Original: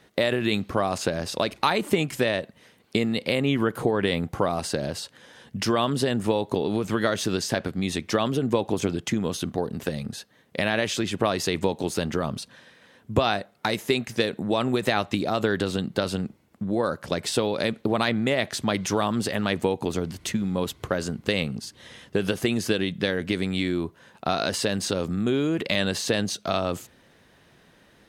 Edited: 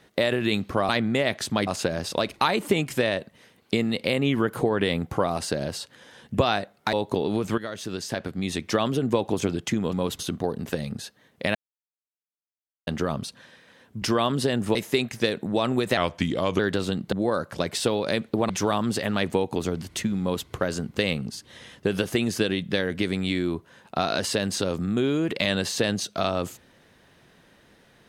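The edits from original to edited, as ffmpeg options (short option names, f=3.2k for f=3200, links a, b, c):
-filter_complex "[0:a]asplit=16[a][b][c][d][e][f][g][h][i][j][k][l][m][n][o][p];[a]atrim=end=0.892[q];[b]atrim=start=18.008:end=18.792[r];[c]atrim=start=0.888:end=5.602[s];[d]atrim=start=13.158:end=13.712[t];[e]atrim=start=6.328:end=6.98,asetpts=PTS-STARTPTS,afade=t=out:st=0.648:d=0.004:c=hsin:silence=0.237137[u];[f]atrim=start=6.98:end=9.332,asetpts=PTS-STARTPTS,afade=t=in:d=1.11:silence=0.237137[v];[g]atrim=start=20.498:end=20.762[w];[h]atrim=start=9.328:end=10.69,asetpts=PTS-STARTPTS,afade=t=out:st=1.358:d=0.004:c=hsin[x];[i]atrim=start=10.69:end=12.01,asetpts=PTS-STARTPTS,volume=0[y];[j]atrim=start=12.01:end=13.162,asetpts=PTS-STARTPTS,afade=t=in:d=0.004:c=hsin[z];[k]atrim=start=5.598:end=6.332[aa];[l]atrim=start=13.708:end=14.934[ab];[m]atrim=start=14.93:end=15.46,asetpts=PTS-STARTPTS,asetrate=37485,aresample=44100[ac];[n]atrim=start=15.456:end=15.992[ad];[o]atrim=start=16.638:end=18.012[ae];[p]atrim=start=18.788[af];[q][r]acrossfade=d=0.004:c1=hsin:c2=hsin[ag];[ag][s]acrossfade=d=0.004:c1=hsin:c2=hsin[ah];[ah][t]acrossfade=d=0.004:c1=hsin:c2=hsin[ai];[u][v]concat=n=2:v=0:a=1[aj];[ai][aj]acrossfade=d=0.004:c1=hsin:c2=hsin[ak];[ak][w]acrossfade=d=0.004:c1=hsin:c2=hsin[al];[x][y][z]concat=n=3:v=0:a=1[am];[al][am]acrossfade=d=0.004:c1=hsin:c2=hsin[an];[an][aa]acrossfade=d=0.004:c1=hsin:c2=hsin[ao];[ao][ab]acrossfade=d=0.004:c1=hsin:c2=hsin[ap];[ap][ac]acrossfade=d=0.004:c1=hsin:c2=hsin[aq];[aq][ad]acrossfade=d=0.004:c1=hsin:c2=hsin[ar];[ar][ae]acrossfade=d=0.004:c1=hsin:c2=hsin[as];[as][af]acrossfade=d=0.004:c1=hsin:c2=hsin"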